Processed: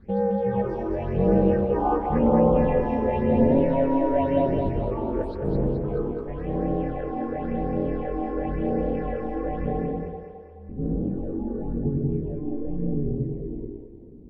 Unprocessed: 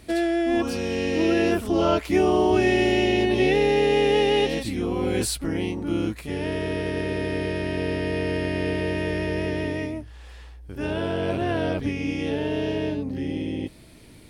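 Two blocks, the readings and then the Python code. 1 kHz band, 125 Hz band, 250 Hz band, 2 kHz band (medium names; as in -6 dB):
+1.0 dB, +2.5 dB, -0.5 dB, -14.5 dB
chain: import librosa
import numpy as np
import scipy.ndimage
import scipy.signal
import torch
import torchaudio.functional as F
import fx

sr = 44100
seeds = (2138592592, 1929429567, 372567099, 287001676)

p1 = scipy.signal.sosfilt(scipy.signal.butter(2, 61.0, 'highpass', fs=sr, output='sos'), x)
p2 = fx.peak_eq(p1, sr, hz=470.0, db=-3.5, octaves=1.7)
p3 = p2 * np.sin(2.0 * np.pi * 140.0 * np.arange(len(p2)) / sr)
p4 = fx.filter_sweep_lowpass(p3, sr, from_hz=900.0, to_hz=310.0, start_s=9.9, end_s=10.56, q=1.2)
p5 = fx.phaser_stages(p4, sr, stages=6, low_hz=130.0, high_hz=2900.0, hz=0.94, feedback_pct=45)
p6 = p5 + fx.echo_split(p5, sr, split_hz=430.0, low_ms=97, high_ms=213, feedback_pct=52, wet_db=-4, dry=0)
y = p6 * librosa.db_to_amplitude(4.0)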